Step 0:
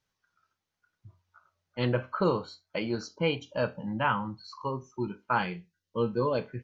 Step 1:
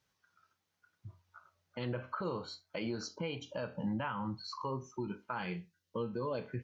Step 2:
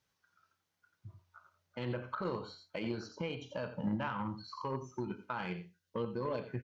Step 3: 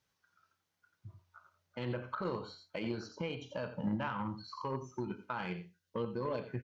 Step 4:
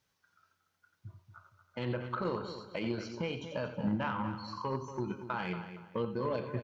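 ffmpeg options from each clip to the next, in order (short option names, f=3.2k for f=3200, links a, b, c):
-af "acompressor=threshold=-33dB:ratio=6,highpass=49,alimiter=level_in=6.5dB:limit=-24dB:level=0:latency=1:release=91,volume=-6.5dB,volume=2.5dB"
-filter_complex "[0:a]aecho=1:1:87:0.299,aeval=exprs='0.0501*(cos(1*acos(clip(val(0)/0.0501,-1,1)))-cos(1*PI/2))+0.00562*(cos(3*acos(clip(val(0)/0.0501,-1,1)))-cos(3*PI/2))':c=same,acrossover=split=3600[a][b];[b]acompressor=threshold=-59dB:ratio=4:attack=1:release=60[c];[a][c]amix=inputs=2:normalize=0,volume=2dB"
-af anull
-filter_complex "[0:a]asplit=2[a][b];[b]adelay=233,lowpass=f=4.5k:p=1,volume=-10.5dB,asplit=2[c][d];[d]adelay=233,lowpass=f=4.5k:p=1,volume=0.31,asplit=2[e][f];[f]adelay=233,lowpass=f=4.5k:p=1,volume=0.31[g];[a][c][e][g]amix=inputs=4:normalize=0,volume=2.5dB"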